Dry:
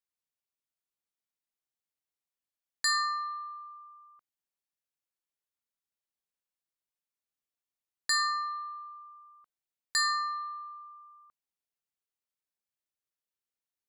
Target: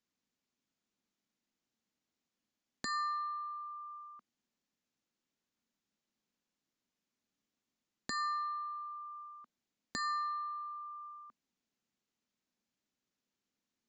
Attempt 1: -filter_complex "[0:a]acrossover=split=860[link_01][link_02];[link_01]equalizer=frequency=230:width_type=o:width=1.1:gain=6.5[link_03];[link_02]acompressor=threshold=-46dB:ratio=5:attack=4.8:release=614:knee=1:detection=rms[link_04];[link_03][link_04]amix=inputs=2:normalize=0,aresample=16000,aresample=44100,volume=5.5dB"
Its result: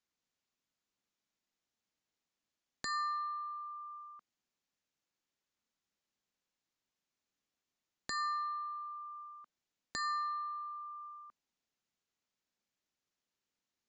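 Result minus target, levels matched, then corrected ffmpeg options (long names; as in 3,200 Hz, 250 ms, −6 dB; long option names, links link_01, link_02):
250 Hz band −7.0 dB
-filter_complex "[0:a]acrossover=split=860[link_01][link_02];[link_01]equalizer=frequency=230:width_type=o:width=1.1:gain=15.5[link_03];[link_02]acompressor=threshold=-46dB:ratio=5:attack=4.8:release=614:knee=1:detection=rms[link_04];[link_03][link_04]amix=inputs=2:normalize=0,aresample=16000,aresample=44100,volume=5.5dB"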